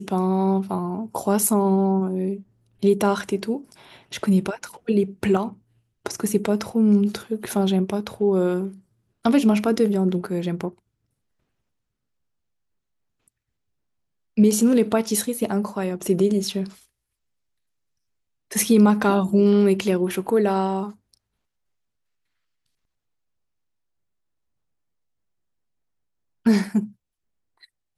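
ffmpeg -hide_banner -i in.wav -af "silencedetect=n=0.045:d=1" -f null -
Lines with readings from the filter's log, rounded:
silence_start: 10.68
silence_end: 14.38 | silence_duration: 3.69
silence_start: 16.64
silence_end: 18.52 | silence_duration: 1.88
silence_start: 20.88
silence_end: 26.46 | silence_duration: 5.58
silence_start: 26.85
silence_end: 27.97 | silence_duration: 1.13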